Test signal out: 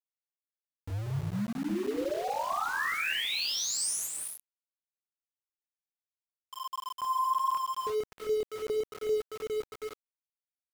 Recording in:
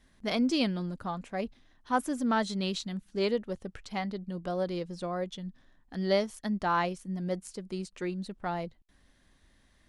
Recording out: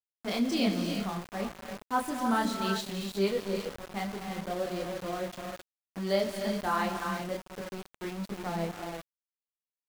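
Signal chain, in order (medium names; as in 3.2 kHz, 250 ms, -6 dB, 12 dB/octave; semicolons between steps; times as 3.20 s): chorus voices 4, 1.3 Hz, delay 28 ms, depth 3 ms; on a send: feedback delay 66 ms, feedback 29%, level -21.5 dB; on the sum: level-controlled noise filter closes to 420 Hz, open at -30.5 dBFS; gated-style reverb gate 390 ms rising, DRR 4 dB; dynamic bell 8.7 kHz, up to +4 dB, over -55 dBFS, Q 3.6; small samples zeroed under -39 dBFS; trim +1.5 dB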